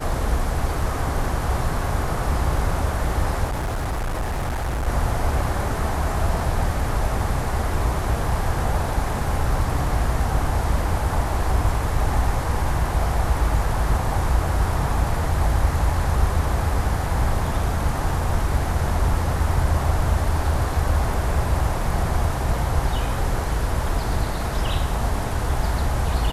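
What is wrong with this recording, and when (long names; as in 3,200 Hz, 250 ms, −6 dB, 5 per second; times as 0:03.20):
0:03.45–0:04.88: clipping −21.5 dBFS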